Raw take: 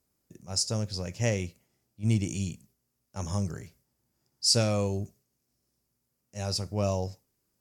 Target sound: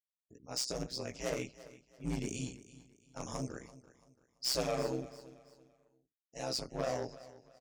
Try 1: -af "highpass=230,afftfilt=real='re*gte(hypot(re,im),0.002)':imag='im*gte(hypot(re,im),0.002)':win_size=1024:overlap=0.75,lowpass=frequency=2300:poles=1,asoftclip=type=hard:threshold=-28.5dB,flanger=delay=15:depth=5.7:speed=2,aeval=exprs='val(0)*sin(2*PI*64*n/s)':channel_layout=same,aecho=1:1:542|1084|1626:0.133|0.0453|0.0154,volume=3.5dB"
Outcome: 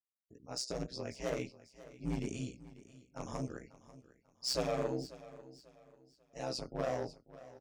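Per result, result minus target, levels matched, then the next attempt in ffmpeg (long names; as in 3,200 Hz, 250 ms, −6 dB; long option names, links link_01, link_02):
echo 205 ms late; 8,000 Hz band −3.5 dB
-af "highpass=230,afftfilt=real='re*gte(hypot(re,im),0.002)':imag='im*gte(hypot(re,im),0.002)':win_size=1024:overlap=0.75,lowpass=frequency=2300:poles=1,asoftclip=type=hard:threshold=-28.5dB,flanger=delay=15:depth=5.7:speed=2,aeval=exprs='val(0)*sin(2*PI*64*n/s)':channel_layout=same,aecho=1:1:337|674|1011:0.133|0.0453|0.0154,volume=3.5dB"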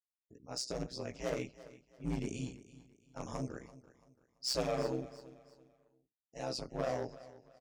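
8,000 Hz band −3.5 dB
-af "highpass=230,afftfilt=real='re*gte(hypot(re,im),0.002)':imag='im*gte(hypot(re,im),0.002)':win_size=1024:overlap=0.75,lowpass=frequency=7900:poles=1,asoftclip=type=hard:threshold=-28.5dB,flanger=delay=15:depth=5.7:speed=2,aeval=exprs='val(0)*sin(2*PI*64*n/s)':channel_layout=same,aecho=1:1:337|674|1011:0.133|0.0453|0.0154,volume=3.5dB"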